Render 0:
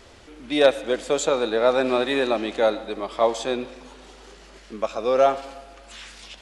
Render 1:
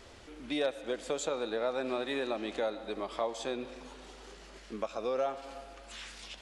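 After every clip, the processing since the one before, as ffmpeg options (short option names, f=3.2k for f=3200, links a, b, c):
-af "acompressor=threshold=-29dB:ratio=2.5,volume=-4.5dB"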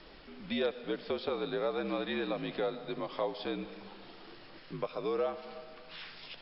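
-af "acrusher=bits=8:mix=0:aa=0.5,afreqshift=-57" -ar 12000 -c:a libmp3lame -b:a 64k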